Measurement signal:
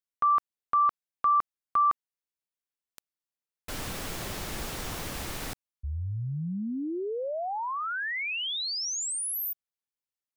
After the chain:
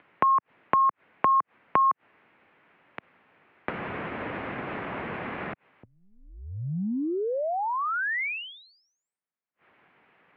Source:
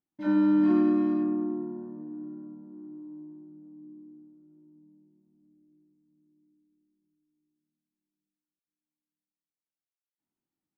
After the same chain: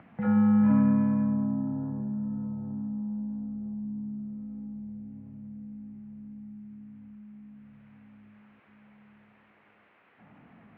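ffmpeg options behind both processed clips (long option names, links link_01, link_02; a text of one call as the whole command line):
ffmpeg -i in.wav -af "acompressor=mode=upward:threshold=-27dB:ratio=2.5:attack=15:release=52:knee=2.83:detection=peak,highpass=frequency=230:width_type=q:width=0.5412,highpass=frequency=230:width_type=q:width=1.307,lowpass=frequency=2500:width_type=q:width=0.5176,lowpass=frequency=2500:width_type=q:width=0.7071,lowpass=frequency=2500:width_type=q:width=1.932,afreqshift=-93,volume=1.5dB" out.wav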